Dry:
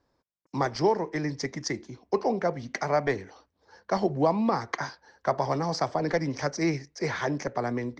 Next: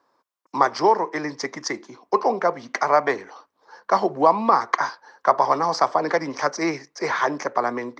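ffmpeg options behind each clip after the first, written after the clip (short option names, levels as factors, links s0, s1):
-af "highpass=290,equalizer=f=1100:t=o:w=0.8:g=10.5,volume=1.58"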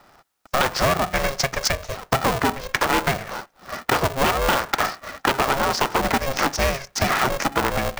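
-af "aeval=exprs='0.891*sin(PI/2*3.16*val(0)/0.891)':c=same,acompressor=threshold=0.1:ratio=4,aeval=exprs='val(0)*sgn(sin(2*PI*270*n/s))':c=same"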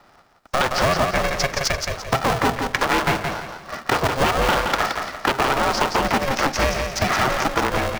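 -filter_complex "[0:a]acrossover=split=750|6900[s0][s1][s2];[s2]aeval=exprs='max(val(0),0)':c=same[s3];[s0][s1][s3]amix=inputs=3:normalize=0,aecho=1:1:171|342|513|684:0.562|0.18|0.0576|0.0184"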